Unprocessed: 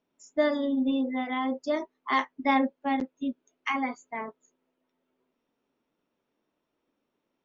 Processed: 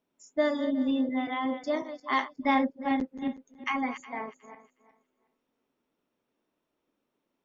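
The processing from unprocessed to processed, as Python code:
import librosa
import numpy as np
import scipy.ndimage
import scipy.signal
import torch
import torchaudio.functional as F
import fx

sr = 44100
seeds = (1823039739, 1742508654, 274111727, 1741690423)

y = fx.reverse_delay_fb(x, sr, ms=182, feedback_pct=44, wet_db=-11.5)
y = fx.low_shelf(y, sr, hz=120.0, db=8.5, at=(2.31, 4.05))
y = F.gain(torch.from_numpy(y), -1.5).numpy()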